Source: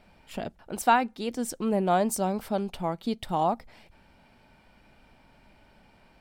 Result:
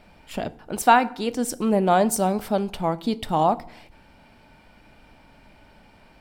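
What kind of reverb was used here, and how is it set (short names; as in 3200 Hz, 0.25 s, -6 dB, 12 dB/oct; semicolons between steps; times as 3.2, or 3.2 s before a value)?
FDN reverb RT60 0.63 s, low-frequency decay 1.3×, high-frequency decay 0.75×, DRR 14.5 dB; gain +5.5 dB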